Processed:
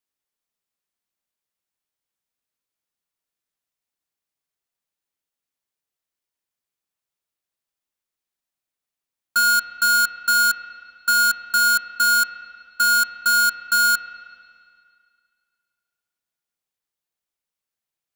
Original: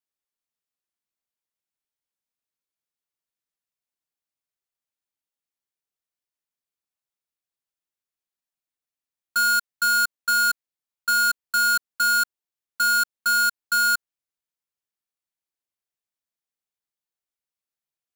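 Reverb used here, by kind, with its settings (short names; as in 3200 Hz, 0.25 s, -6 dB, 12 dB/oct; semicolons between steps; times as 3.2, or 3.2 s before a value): spring tank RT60 2.2 s, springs 33/59 ms, chirp 35 ms, DRR 8.5 dB; gain +3.5 dB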